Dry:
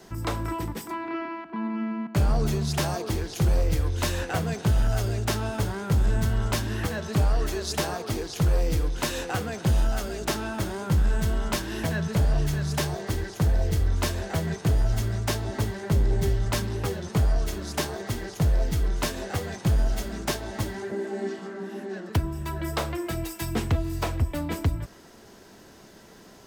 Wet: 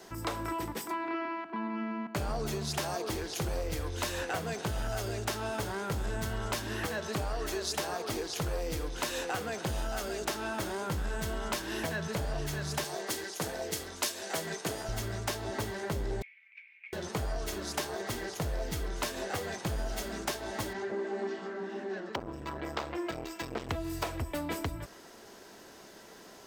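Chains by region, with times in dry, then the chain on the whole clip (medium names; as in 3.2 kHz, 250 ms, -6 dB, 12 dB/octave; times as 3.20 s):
12.84–14.89 s: high-pass 190 Hz + peaking EQ 8.7 kHz +7.5 dB 2.7 oct + three bands expanded up and down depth 70%
16.22–16.93 s: Butterworth band-pass 2.3 kHz, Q 7.7 + compressor with a negative ratio -48 dBFS, ratio -0.5
20.73–23.69 s: boxcar filter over 4 samples + transformer saturation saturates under 500 Hz
whole clip: tone controls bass -10 dB, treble 0 dB; compression, threshold -30 dBFS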